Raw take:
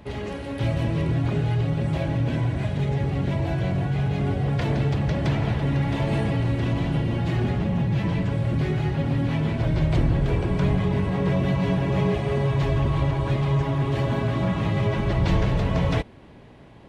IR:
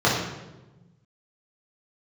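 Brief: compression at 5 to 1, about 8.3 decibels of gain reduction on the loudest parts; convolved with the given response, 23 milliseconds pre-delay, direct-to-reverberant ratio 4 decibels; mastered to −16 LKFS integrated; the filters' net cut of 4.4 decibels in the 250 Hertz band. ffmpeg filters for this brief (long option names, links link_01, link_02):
-filter_complex "[0:a]equalizer=frequency=250:width_type=o:gain=-8,acompressor=threshold=-27dB:ratio=5,asplit=2[link_01][link_02];[1:a]atrim=start_sample=2205,adelay=23[link_03];[link_02][link_03]afir=irnorm=-1:irlink=0,volume=-23.5dB[link_04];[link_01][link_04]amix=inputs=2:normalize=0,volume=10.5dB"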